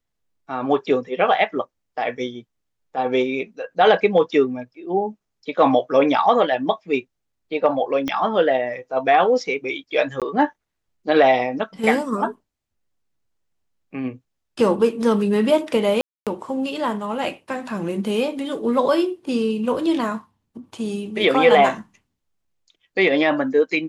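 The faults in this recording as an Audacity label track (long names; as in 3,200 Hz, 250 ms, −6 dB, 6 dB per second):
8.080000	8.080000	click −12 dBFS
10.200000	10.220000	drop-out 17 ms
16.010000	16.270000	drop-out 257 ms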